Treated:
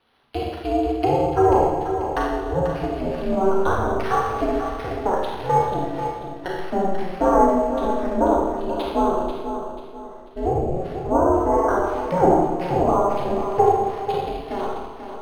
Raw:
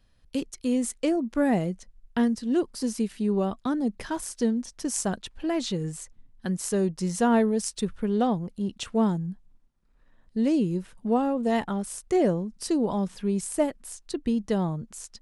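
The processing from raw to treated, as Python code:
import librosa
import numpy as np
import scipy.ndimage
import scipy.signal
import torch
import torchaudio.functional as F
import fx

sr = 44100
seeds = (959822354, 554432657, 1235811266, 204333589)

y = fx.fade_out_tail(x, sr, length_s=1.6)
y = fx.weighting(y, sr, curve='D')
y = fx.env_lowpass_down(y, sr, base_hz=650.0, full_db=-21.0)
y = fx.band_shelf(y, sr, hz=830.0, db=13.5, octaves=1.7)
y = y * np.sin(2.0 * np.pi * 190.0 * np.arange(len(y)) / sr)
y = fx.doubler(y, sr, ms=13.0, db=-11.5)
y = fx.echo_feedback(y, sr, ms=489, feedback_pct=36, wet_db=-9.0)
y = fx.rev_schroeder(y, sr, rt60_s=1.2, comb_ms=28, drr_db=-3.0)
y = np.interp(np.arange(len(y)), np.arange(len(y))[::6], y[::6])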